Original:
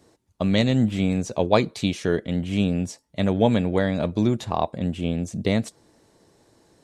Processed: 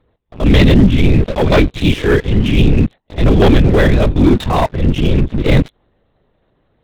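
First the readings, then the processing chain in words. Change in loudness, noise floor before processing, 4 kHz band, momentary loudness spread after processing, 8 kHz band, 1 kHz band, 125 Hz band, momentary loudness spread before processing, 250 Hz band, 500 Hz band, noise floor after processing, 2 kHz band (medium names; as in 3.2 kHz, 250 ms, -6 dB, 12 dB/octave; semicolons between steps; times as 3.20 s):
+10.5 dB, -63 dBFS, +9.5 dB, 6 LU, no reading, +8.0 dB, +13.0 dB, 7 LU, +9.5 dB, +9.0 dB, -62 dBFS, +12.0 dB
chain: pre-echo 82 ms -20 dB; LPC vocoder at 8 kHz whisper; waveshaping leveller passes 3; dynamic bell 740 Hz, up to -5 dB, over -29 dBFS, Q 0.91; transient shaper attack -6 dB, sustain 0 dB; trim +5 dB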